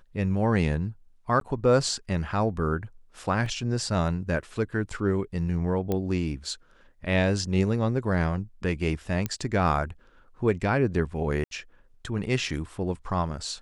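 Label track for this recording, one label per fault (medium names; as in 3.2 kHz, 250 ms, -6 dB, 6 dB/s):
1.400000	1.410000	dropout 12 ms
3.460000	3.460000	dropout 2.3 ms
5.920000	5.920000	pop -15 dBFS
9.260000	9.260000	pop -14 dBFS
11.440000	11.510000	dropout 72 ms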